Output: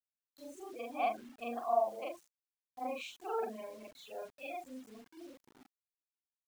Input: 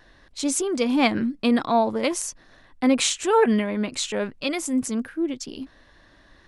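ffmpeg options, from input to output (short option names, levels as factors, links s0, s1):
-filter_complex "[0:a]afftfilt=real='re':imag='-im':win_size=4096:overlap=0.75,afftfilt=real='re*gte(hypot(re,im),0.0282)':imag='im*gte(hypot(re,im),0.0282)':win_size=1024:overlap=0.75,asplit=3[s0][s1][s2];[s0]bandpass=f=730:t=q:w=8,volume=1[s3];[s1]bandpass=f=1090:t=q:w=8,volume=0.501[s4];[s2]bandpass=f=2440:t=q:w=8,volume=0.355[s5];[s3][s4][s5]amix=inputs=3:normalize=0,acrusher=bits=9:mix=0:aa=0.000001"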